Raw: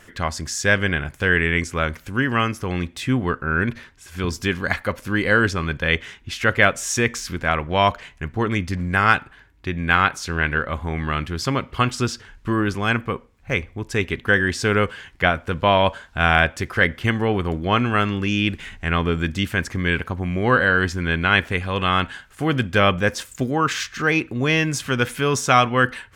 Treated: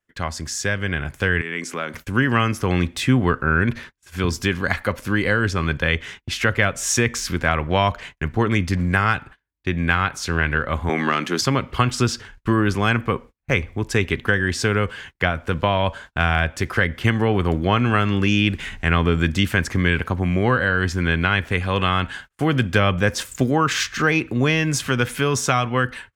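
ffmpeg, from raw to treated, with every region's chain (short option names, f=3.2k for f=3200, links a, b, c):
-filter_complex "[0:a]asettb=1/sr,asplit=3[a][b][c];[a]atrim=end=1.414[d];[b]atrim=start=1.41:end=1.94,asetpts=PTS-STARTPTS,afade=t=in:d=0.004:c=qsin,afade=t=out:st=0.526:d=0.004:c=qsin,highpass=f=180:w=0.5412,highpass=f=180:w=1.3066,acompressor=threshold=-33dB:ratio=2:attack=3.2:release=140:knee=1:detection=peak[e];[c]atrim=start=1.936[f];[d][e]acrossfade=d=0.004:c1=hsin:c2=qsin[g];[g][f]acrossfade=d=0.004:c1=qsin:c2=hsin,asettb=1/sr,asplit=3[h][i][j];[h]atrim=end=10.894[k];[i]atrim=start=10.89:end=11.41,asetpts=PTS-STARTPTS,afade=t=in:d=0.004:c=qsin,afade=t=out:st=0.516:d=0.004:c=qsin,highpass=f=210:w=0.5412,highpass=f=210:w=1.3066,acontrast=37,equalizer=f=6.4k:t=o:w=0.23:g=8.5[l];[j]atrim=start=11.406[m];[k][l]acrossfade=d=0.004:c1=hsin:c2=qsin[n];[n][m]acrossfade=d=0.004:c1=qsin:c2=hsin,acrossover=split=140[o][p];[p]acompressor=threshold=-20dB:ratio=4[q];[o][q]amix=inputs=2:normalize=0,agate=range=-34dB:threshold=-42dB:ratio=16:detection=peak,dynaudnorm=f=860:g=3:m=11.5dB,volume=-1dB"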